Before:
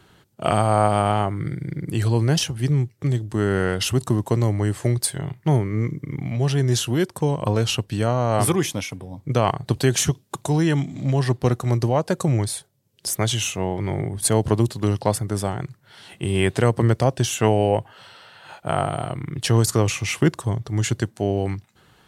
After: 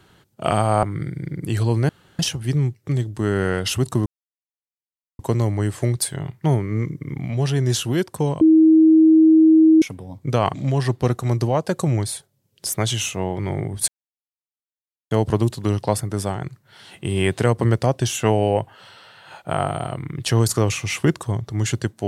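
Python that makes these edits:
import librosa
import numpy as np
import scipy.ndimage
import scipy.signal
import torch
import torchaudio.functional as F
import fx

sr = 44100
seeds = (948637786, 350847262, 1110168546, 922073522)

y = fx.edit(x, sr, fx.cut(start_s=0.83, length_s=0.45),
    fx.insert_room_tone(at_s=2.34, length_s=0.3),
    fx.insert_silence(at_s=4.21, length_s=1.13),
    fx.bleep(start_s=7.43, length_s=1.41, hz=318.0, db=-8.5),
    fx.cut(start_s=9.56, length_s=1.39),
    fx.insert_silence(at_s=14.29, length_s=1.23), tone=tone)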